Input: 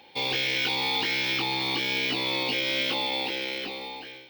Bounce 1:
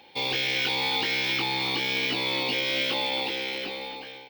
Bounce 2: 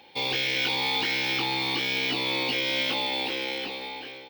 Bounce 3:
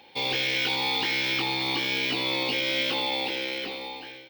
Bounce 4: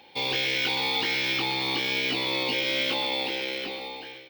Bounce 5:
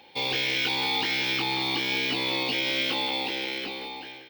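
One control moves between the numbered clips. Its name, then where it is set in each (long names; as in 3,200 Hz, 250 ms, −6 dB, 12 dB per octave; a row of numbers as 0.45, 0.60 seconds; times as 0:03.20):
far-end echo of a speakerphone, delay time: 270, 400, 80, 120, 180 milliseconds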